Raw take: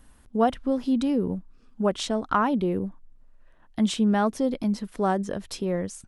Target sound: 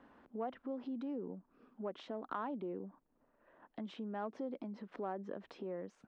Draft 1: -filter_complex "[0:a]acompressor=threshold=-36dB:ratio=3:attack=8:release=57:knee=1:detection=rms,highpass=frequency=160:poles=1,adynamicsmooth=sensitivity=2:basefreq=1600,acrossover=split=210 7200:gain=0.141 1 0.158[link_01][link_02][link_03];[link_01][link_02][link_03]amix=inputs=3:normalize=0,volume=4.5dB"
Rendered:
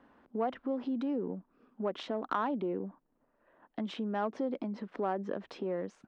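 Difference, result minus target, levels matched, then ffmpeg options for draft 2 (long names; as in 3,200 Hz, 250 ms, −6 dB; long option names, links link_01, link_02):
downward compressor: peak gain reduction −7.5 dB
-filter_complex "[0:a]acompressor=threshold=-47.5dB:ratio=3:attack=8:release=57:knee=1:detection=rms,highpass=frequency=160:poles=1,adynamicsmooth=sensitivity=2:basefreq=1600,acrossover=split=210 7200:gain=0.141 1 0.158[link_01][link_02][link_03];[link_01][link_02][link_03]amix=inputs=3:normalize=0,volume=4.5dB"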